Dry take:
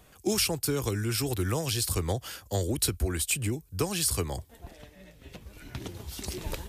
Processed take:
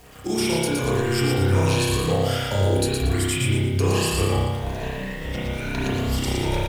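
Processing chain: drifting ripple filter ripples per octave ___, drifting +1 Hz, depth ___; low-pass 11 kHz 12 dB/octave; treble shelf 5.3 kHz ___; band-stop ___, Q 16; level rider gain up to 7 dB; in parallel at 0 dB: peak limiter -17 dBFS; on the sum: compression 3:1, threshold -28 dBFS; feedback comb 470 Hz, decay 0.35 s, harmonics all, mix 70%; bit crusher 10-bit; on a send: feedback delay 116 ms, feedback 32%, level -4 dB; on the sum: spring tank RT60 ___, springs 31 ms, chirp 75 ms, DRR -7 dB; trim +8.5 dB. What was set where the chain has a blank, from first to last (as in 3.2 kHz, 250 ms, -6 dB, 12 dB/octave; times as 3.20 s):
1.5, 7 dB, -2 dB, 1.3 kHz, 1.2 s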